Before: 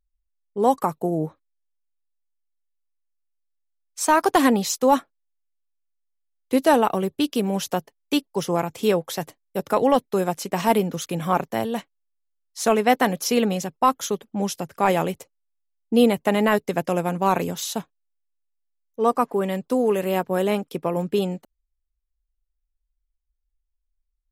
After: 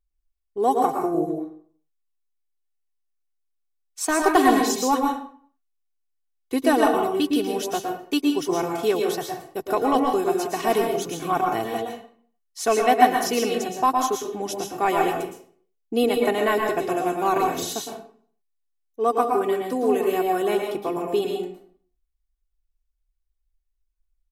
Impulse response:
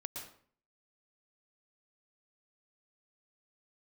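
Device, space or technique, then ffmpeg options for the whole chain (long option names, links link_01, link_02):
microphone above a desk: -filter_complex "[0:a]aecho=1:1:2.7:0.69[link_01];[1:a]atrim=start_sample=2205[link_02];[link_01][link_02]afir=irnorm=-1:irlink=0"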